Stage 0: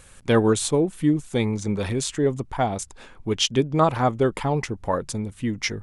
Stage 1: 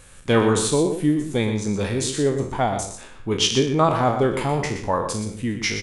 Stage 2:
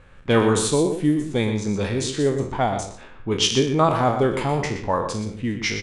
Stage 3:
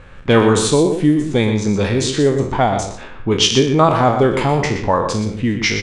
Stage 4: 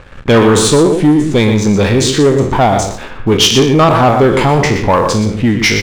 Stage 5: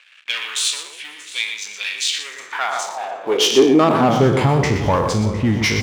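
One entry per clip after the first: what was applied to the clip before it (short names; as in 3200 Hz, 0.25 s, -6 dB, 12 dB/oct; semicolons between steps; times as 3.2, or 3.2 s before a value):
spectral trails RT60 0.46 s; echo 0.121 s -9 dB
low-pass opened by the level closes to 2100 Hz, open at -15.5 dBFS
LPF 8100 Hz 12 dB/oct; in parallel at -0.5 dB: compressor, threshold -26 dBFS, peak gain reduction 13 dB; on the sum: gain +3.5 dB
sample leveller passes 2
echo with dull and thin repeats by turns 0.354 s, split 980 Hz, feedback 67%, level -13.5 dB; high-pass sweep 2600 Hz -> 69 Hz, 2.23–4.74; gain -7.5 dB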